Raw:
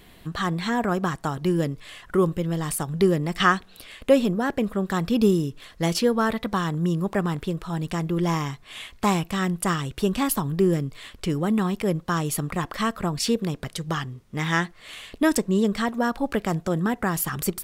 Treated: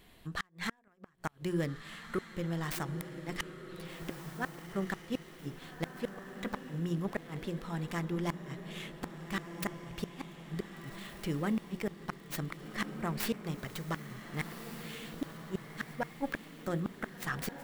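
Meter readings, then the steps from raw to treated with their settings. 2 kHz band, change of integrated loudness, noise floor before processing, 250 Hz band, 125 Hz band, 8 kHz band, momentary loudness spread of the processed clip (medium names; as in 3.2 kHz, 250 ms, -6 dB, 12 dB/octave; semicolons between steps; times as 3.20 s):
-11.0 dB, -14.0 dB, -51 dBFS, -14.0 dB, -12.5 dB, -15.5 dB, 8 LU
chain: tracing distortion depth 0.42 ms; hum notches 60/120/180/240/300/360/420/480/540 Hz; dynamic bell 1.8 kHz, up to +8 dB, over -44 dBFS, Q 1.8; inverted gate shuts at -13 dBFS, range -37 dB; echo that smears into a reverb 1541 ms, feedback 44%, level -8.5 dB; trim -9 dB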